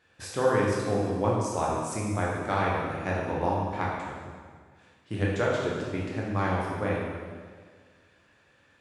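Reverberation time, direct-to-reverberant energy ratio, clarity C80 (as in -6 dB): 1.7 s, -4.5 dB, 2.0 dB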